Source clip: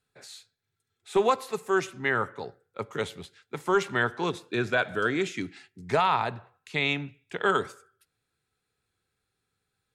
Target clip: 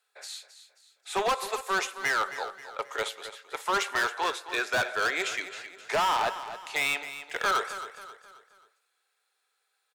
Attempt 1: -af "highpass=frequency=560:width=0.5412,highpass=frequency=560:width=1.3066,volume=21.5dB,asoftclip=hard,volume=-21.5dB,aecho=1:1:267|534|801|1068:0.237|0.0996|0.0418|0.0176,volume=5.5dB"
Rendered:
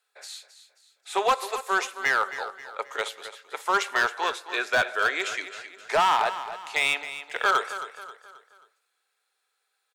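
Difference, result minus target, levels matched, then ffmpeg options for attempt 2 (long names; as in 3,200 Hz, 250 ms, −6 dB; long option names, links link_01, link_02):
gain into a clipping stage and back: distortion −6 dB
-af "highpass=frequency=560:width=0.5412,highpass=frequency=560:width=1.3066,volume=28dB,asoftclip=hard,volume=-28dB,aecho=1:1:267|534|801|1068:0.237|0.0996|0.0418|0.0176,volume=5.5dB"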